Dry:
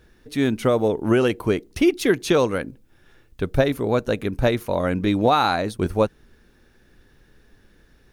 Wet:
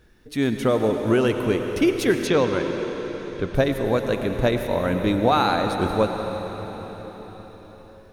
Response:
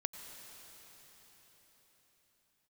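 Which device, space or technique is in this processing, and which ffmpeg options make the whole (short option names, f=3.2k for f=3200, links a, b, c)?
cathedral: -filter_complex "[1:a]atrim=start_sample=2205[a];[0:a][a]afir=irnorm=-1:irlink=0,asettb=1/sr,asplit=3[b][c][d];[b]atrim=end=2.274[e];[c]atrim=start=2.27:end=3.55,asetpts=PTS-STARTPTS,afade=t=in:d=0.004:c=qsin,afade=t=out:st=1.276:d=0.004:c=qsin,lowpass=5.2k[f];[d]atrim=start=3.546[g];[e][f]acrossfade=d=0.004:c1=hsin:c2=qsin[h];[h][g]acrossfade=d=0.004:c1=qsin:c2=hsin"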